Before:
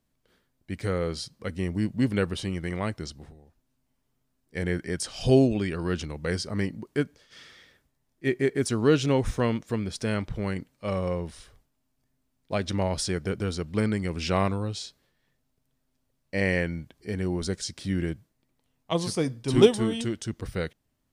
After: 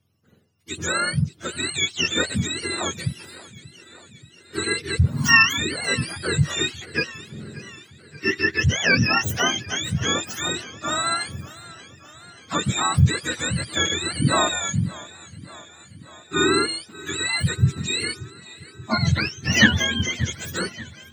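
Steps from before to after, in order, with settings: spectrum mirrored in octaves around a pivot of 850 Hz; warbling echo 0.583 s, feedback 67%, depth 86 cents, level -19.5 dB; gain +7 dB

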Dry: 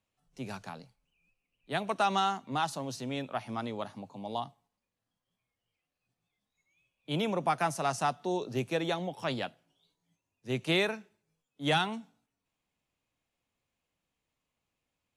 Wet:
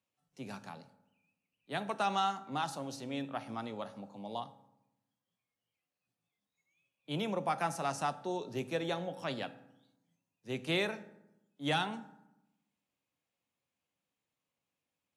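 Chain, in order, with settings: HPF 110 Hz; on a send: reverb RT60 0.90 s, pre-delay 3 ms, DRR 11.5 dB; on the sum: gain -4.5 dB

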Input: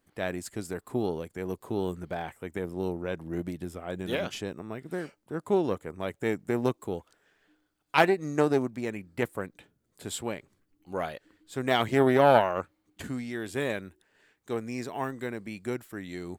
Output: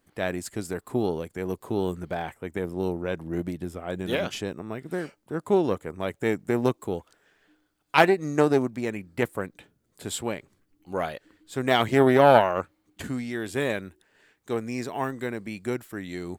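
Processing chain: 2.34–4.67 mismatched tape noise reduction decoder only; gain +3.5 dB

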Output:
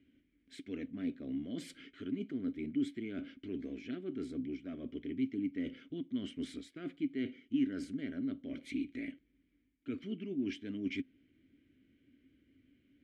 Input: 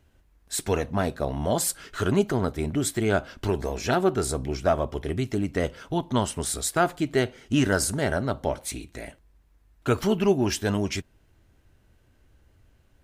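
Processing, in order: high shelf 3400 Hz -10.5 dB; reverse; compressor 6:1, threshold -34 dBFS, peak gain reduction 17 dB; reverse; vowel filter i; gain +10 dB

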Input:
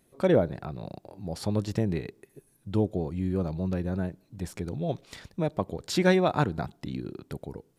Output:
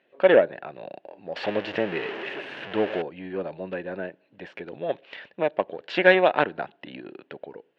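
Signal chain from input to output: 1.36–3.02 zero-crossing step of -29 dBFS; added harmonics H 6 -25 dB, 7 -29 dB, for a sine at -9.5 dBFS; speaker cabinet 420–3200 Hz, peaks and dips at 570 Hz +5 dB, 1200 Hz -5 dB, 1700 Hz +8 dB, 2800 Hz +9 dB; gain +5.5 dB

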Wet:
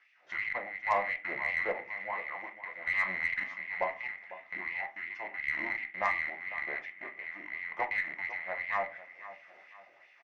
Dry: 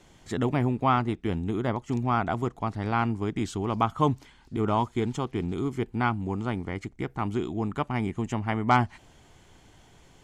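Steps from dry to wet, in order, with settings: rattling part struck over -41 dBFS, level -25 dBFS; LPF 3700 Hz 12 dB/oct; bell 2500 Hz +15 dB 0.26 oct; in parallel at -2.5 dB: compressor, threshold -39 dBFS, peak gain reduction 21.5 dB; on the sum: random-step tremolo, depth 70%; pitch shift -3.5 st; LFO high-pass sine 2.8 Hz 520–2600 Hz; feedback echo 0.5 s, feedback 38%, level -15 dB; reverb RT60 0.35 s, pre-delay 6 ms, DRR 4.5 dB; added harmonics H 3 -20 dB, 5 -25 dB, 6 -35 dB, 7 -40 dB, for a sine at -6.5 dBFS; gain -7.5 dB

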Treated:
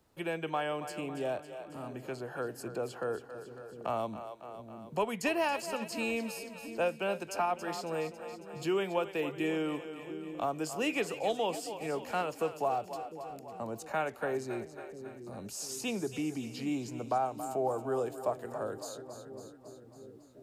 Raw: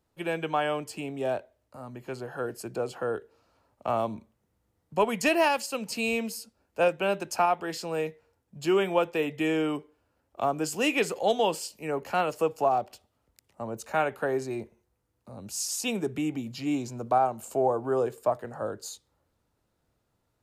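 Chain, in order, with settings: split-band echo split 380 Hz, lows 0.699 s, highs 0.275 s, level -12.5 dB; three-band squash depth 40%; gain -6 dB

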